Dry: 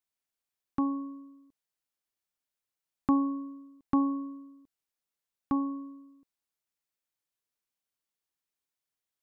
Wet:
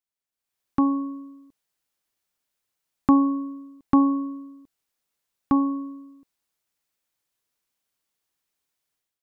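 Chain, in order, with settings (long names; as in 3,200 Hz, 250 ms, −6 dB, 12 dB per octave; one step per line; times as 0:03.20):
automatic gain control gain up to 12.5 dB
level −4 dB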